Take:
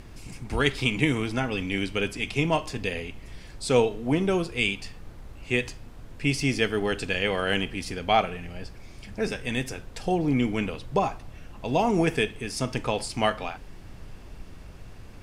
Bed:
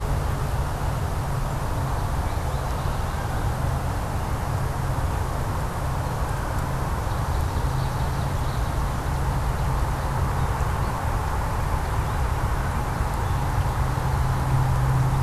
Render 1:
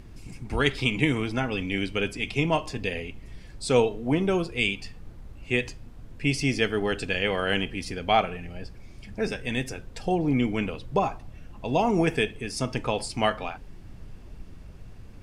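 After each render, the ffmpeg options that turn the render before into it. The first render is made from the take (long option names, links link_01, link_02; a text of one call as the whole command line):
ffmpeg -i in.wav -af "afftdn=noise_reduction=6:noise_floor=-45" out.wav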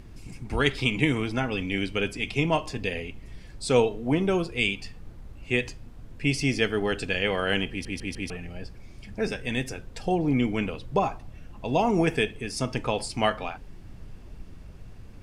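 ffmpeg -i in.wav -filter_complex "[0:a]asplit=5[link_01][link_02][link_03][link_04][link_05];[link_01]atrim=end=7.852[link_06];[link_02]atrim=start=7.698:end=7.852[link_07];[link_03]atrim=start=7.698:end=7.852[link_08];[link_04]atrim=start=7.698:end=7.852[link_09];[link_05]atrim=start=8.298[link_10];[link_06][link_07]acrossfade=duration=0.004:curve1=hsin:curve2=hsin[link_11];[link_11][link_08]acrossfade=duration=0.004:curve1=hsin:curve2=hsin[link_12];[link_12][link_09]acrossfade=duration=0.004:curve1=hsin:curve2=hsin[link_13];[link_13][link_10]acrossfade=duration=0.004:curve1=hsin:curve2=hsin" out.wav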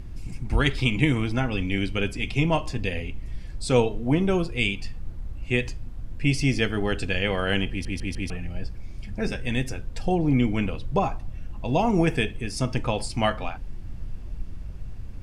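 ffmpeg -i in.wav -af "lowshelf=frequency=120:gain=11,bandreject=frequency=430:width=14" out.wav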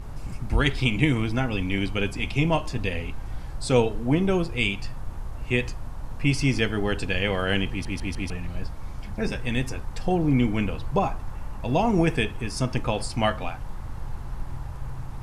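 ffmpeg -i in.wav -i bed.wav -filter_complex "[1:a]volume=-18dB[link_01];[0:a][link_01]amix=inputs=2:normalize=0" out.wav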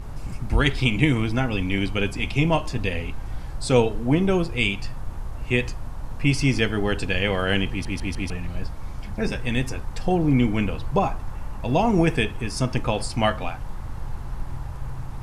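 ffmpeg -i in.wav -af "volume=2dB" out.wav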